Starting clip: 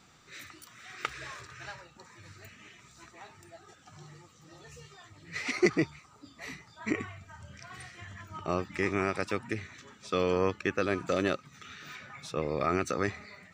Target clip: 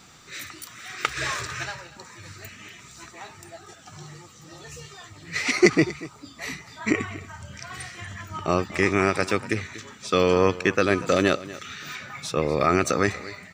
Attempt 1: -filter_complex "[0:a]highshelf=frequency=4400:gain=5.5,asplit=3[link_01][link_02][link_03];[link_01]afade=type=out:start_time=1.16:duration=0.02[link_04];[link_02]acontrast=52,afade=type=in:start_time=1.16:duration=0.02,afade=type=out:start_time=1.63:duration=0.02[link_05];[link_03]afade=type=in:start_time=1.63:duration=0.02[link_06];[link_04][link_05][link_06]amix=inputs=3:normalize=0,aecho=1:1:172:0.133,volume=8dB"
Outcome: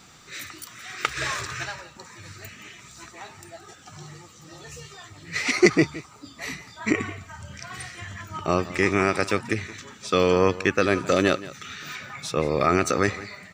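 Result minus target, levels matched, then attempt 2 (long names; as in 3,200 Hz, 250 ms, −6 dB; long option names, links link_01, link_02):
echo 67 ms early
-filter_complex "[0:a]highshelf=frequency=4400:gain=5.5,asplit=3[link_01][link_02][link_03];[link_01]afade=type=out:start_time=1.16:duration=0.02[link_04];[link_02]acontrast=52,afade=type=in:start_time=1.16:duration=0.02,afade=type=out:start_time=1.63:duration=0.02[link_05];[link_03]afade=type=in:start_time=1.63:duration=0.02[link_06];[link_04][link_05][link_06]amix=inputs=3:normalize=0,aecho=1:1:239:0.133,volume=8dB"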